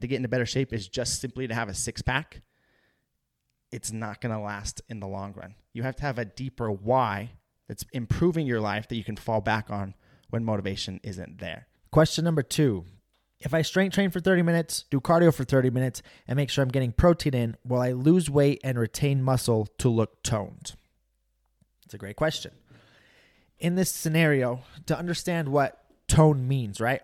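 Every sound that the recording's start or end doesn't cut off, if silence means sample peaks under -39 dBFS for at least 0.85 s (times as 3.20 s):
3.72–20.74 s
21.91–22.49 s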